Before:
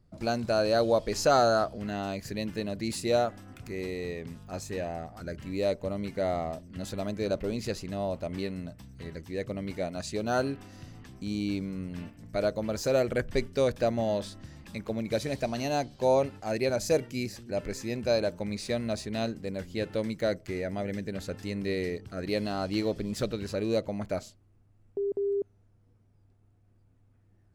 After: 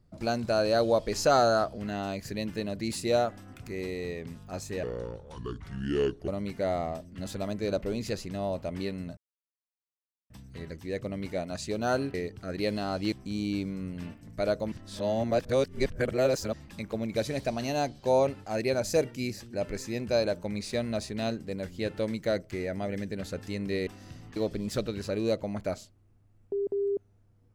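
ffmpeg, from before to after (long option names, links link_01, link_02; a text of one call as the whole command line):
ffmpeg -i in.wav -filter_complex "[0:a]asplit=10[link_01][link_02][link_03][link_04][link_05][link_06][link_07][link_08][link_09][link_10];[link_01]atrim=end=4.834[link_11];[link_02]atrim=start=4.83:end=5.86,asetpts=PTS-STARTPTS,asetrate=31311,aresample=44100,atrim=end_sample=63976,asetpts=PTS-STARTPTS[link_12];[link_03]atrim=start=5.856:end=8.75,asetpts=PTS-STARTPTS,afade=type=out:start_time=2.89:duration=0.004:curve=hsin,apad=pad_dur=1.13[link_13];[link_04]atrim=start=8.75:end=10.592,asetpts=PTS-STARTPTS,afade=type=in:duration=0.004:curve=hsin[link_14];[link_05]atrim=start=21.828:end=22.812[link_15];[link_06]atrim=start=11.078:end=12.682[link_16];[link_07]atrim=start=12.678:end=14.492,asetpts=PTS-STARTPTS,areverse[link_17];[link_08]atrim=start=14.488:end=21.832[link_18];[link_09]atrim=start=10.588:end=11.082[link_19];[link_10]atrim=start=22.808[link_20];[link_11][link_12]acrossfade=duration=0.004:curve1=hsin:curve2=hsin[link_21];[link_13][link_14]concat=n=2:v=0:a=1[link_22];[link_21][link_22]acrossfade=duration=0.004:curve1=hsin:curve2=hsin[link_23];[link_23][link_15]acrossfade=duration=0.004:curve1=hsin:curve2=hsin[link_24];[link_24][link_16]acrossfade=duration=0.004:curve1=hsin:curve2=hsin[link_25];[link_25][link_17]acrossfade=duration=0.004:curve1=hsin:curve2=hsin[link_26];[link_26][link_18]acrossfade=duration=0.004:curve1=hsin:curve2=hsin[link_27];[link_27][link_19]acrossfade=duration=0.004:curve1=hsin:curve2=hsin[link_28];[link_28][link_20]acrossfade=duration=0.004:curve1=hsin:curve2=hsin" out.wav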